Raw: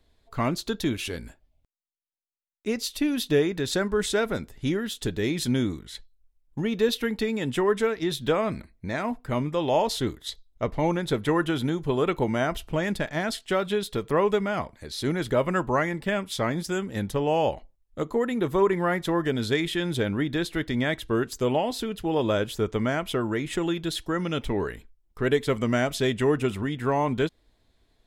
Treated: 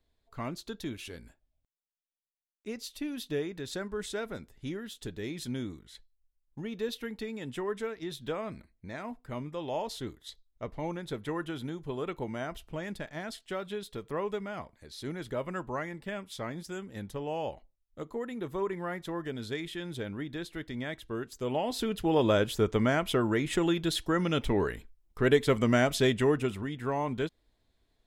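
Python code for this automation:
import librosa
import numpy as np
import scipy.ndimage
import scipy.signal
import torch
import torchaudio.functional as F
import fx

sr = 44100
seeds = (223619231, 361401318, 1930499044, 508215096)

y = fx.gain(x, sr, db=fx.line((21.34, -11.0), (21.87, -0.5), (26.05, -0.5), (26.64, -7.0)))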